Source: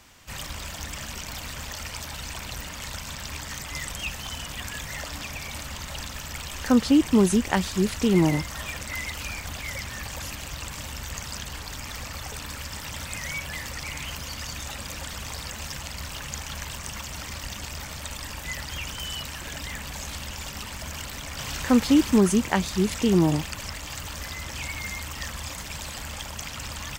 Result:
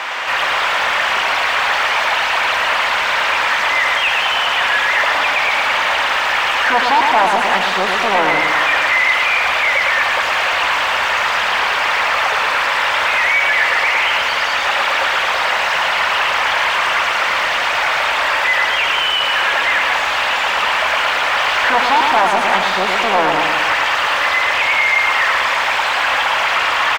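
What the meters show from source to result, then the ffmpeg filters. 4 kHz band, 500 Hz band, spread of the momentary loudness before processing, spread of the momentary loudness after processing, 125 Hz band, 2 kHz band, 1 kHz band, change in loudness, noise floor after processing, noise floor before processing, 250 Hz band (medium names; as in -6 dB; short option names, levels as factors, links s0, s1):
+17.0 dB, +9.5 dB, 14 LU, 3 LU, no reading, +23.0 dB, +23.0 dB, +14.5 dB, -18 dBFS, -38 dBFS, -8.5 dB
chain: -filter_complex "[0:a]aeval=exprs='0.501*sin(PI/2*3.98*val(0)/0.501)':c=same,asplit=2[s0][s1];[s1]highpass=f=720:p=1,volume=31.6,asoftclip=type=tanh:threshold=0.501[s2];[s0][s2]amix=inputs=2:normalize=0,lowpass=f=2500:p=1,volume=0.501,acrossover=split=510 3400:gain=0.0794 1 0.141[s3][s4][s5];[s3][s4][s5]amix=inputs=3:normalize=0,asplit=2[s6][s7];[s7]aecho=0:1:111|222|333|444|555|666|777|888:0.596|0.345|0.2|0.116|0.0674|0.0391|0.0227|0.0132[s8];[s6][s8]amix=inputs=2:normalize=0"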